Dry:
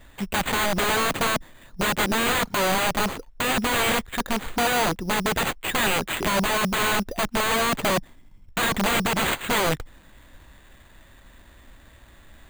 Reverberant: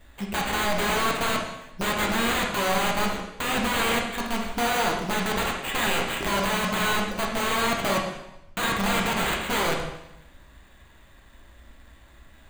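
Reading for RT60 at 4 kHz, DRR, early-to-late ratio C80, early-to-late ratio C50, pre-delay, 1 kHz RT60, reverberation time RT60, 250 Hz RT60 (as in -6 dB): 0.85 s, -0.5 dB, 6.5 dB, 3.5 dB, 6 ms, 0.90 s, 0.90 s, 0.85 s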